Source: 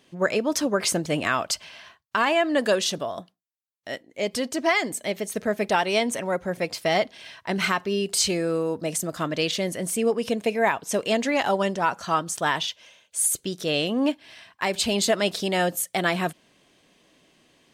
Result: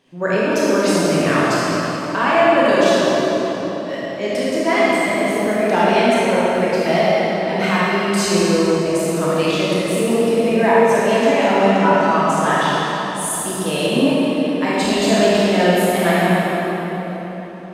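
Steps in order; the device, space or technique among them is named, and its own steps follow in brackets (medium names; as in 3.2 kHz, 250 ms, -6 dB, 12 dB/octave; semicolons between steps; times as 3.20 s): swimming-pool hall (reverberation RT60 4.4 s, pre-delay 20 ms, DRR -9 dB; treble shelf 3.3 kHz -7.5 dB)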